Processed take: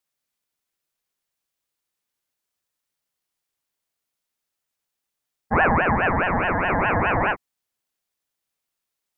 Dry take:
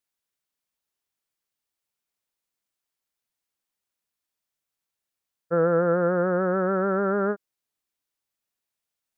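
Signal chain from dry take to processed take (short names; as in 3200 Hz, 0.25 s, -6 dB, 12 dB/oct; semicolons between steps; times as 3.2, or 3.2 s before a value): 5.73–6.7 bell 95 Hz -5.5 dB 2.9 oct; ring modulator with a swept carrier 780 Hz, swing 65%, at 4.8 Hz; gain +6 dB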